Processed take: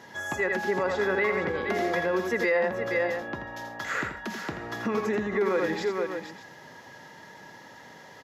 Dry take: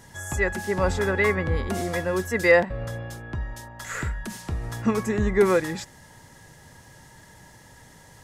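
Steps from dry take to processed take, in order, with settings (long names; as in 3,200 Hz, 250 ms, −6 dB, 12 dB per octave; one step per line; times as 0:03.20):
moving average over 5 samples
on a send: multi-tap delay 83/468/599 ms −7.5/−11.5/−18 dB
on the sum: brickwall limiter −17 dBFS, peak gain reduction 11 dB
downward compressor 1.5 to 1, threshold −31 dBFS, peak gain reduction 4 dB
high-pass filter 260 Hz 12 dB per octave
level +4.5 dB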